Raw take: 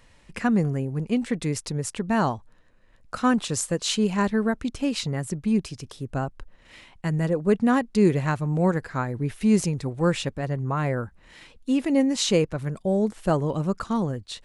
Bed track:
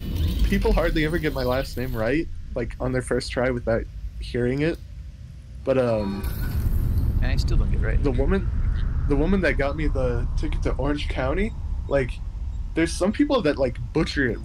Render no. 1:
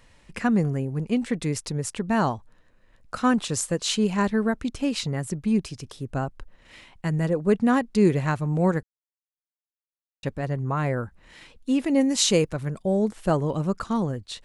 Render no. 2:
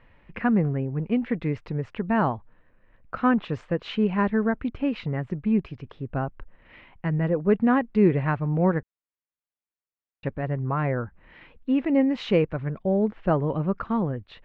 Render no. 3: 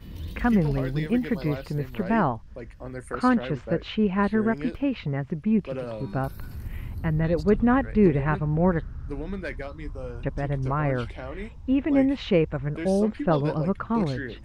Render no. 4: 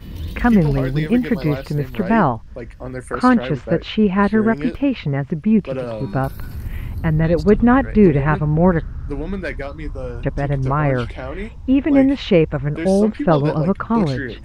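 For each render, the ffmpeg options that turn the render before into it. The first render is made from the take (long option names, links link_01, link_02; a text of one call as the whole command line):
ffmpeg -i in.wav -filter_complex "[0:a]asettb=1/sr,asplit=3[link_01][link_02][link_03];[link_01]atrim=end=12.014[link_04];[link_02]atrim=start=12.01:end=12.57,asetpts=PTS-STARTPTS,afade=type=in:duration=0.004:curve=qsin,afade=type=out:start_time=0.556:duration=0.004:curve=qsin,highshelf=frequency=5600:gain=8.5[link_05];[link_03]atrim=start=12.566[link_06];[link_04][link_05]acrossfade=duration=0.004:curve1=hsin:curve2=qsin[link_07];[link_07][link_06]acrossfade=duration=0.004:curve1=qsin:curve2=hsin,asplit=3[link_08][link_09][link_10];[link_08]atrim=end=8.83,asetpts=PTS-STARTPTS,afade=type=out:start_time=8.826:duration=0.004:curve=hsin[link_11];[link_09]atrim=start=8.83:end=10.23,asetpts=PTS-STARTPTS,volume=0[link_12];[link_10]atrim=start=10.23,asetpts=PTS-STARTPTS,afade=type=in:duration=0.004:curve=hsin[link_13];[link_11][link_12][link_13]concat=n=3:v=0:a=1" out.wav
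ffmpeg -i in.wav -af "lowpass=frequency=2600:width=0.5412,lowpass=frequency=2600:width=1.3066" out.wav
ffmpeg -i in.wav -i bed.wav -filter_complex "[1:a]volume=-12dB[link_01];[0:a][link_01]amix=inputs=2:normalize=0" out.wav
ffmpeg -i in.wav -af "volume=7.5dB,alimiter=limit=-2dB:level=0:latency=1" out.wav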